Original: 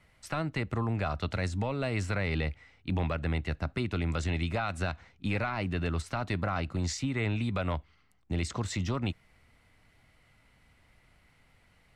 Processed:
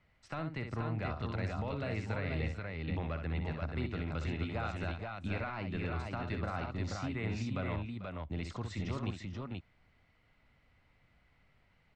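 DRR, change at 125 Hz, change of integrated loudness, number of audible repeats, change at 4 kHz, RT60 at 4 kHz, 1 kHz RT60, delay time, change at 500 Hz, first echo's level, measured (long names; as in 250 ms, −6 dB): no reverb audible, −5.0 dB, −5.5 dB, 3, −8.0 dB, no reverb audible, no reverb audible, 63 ms, −5.0 dB, −7.0 dB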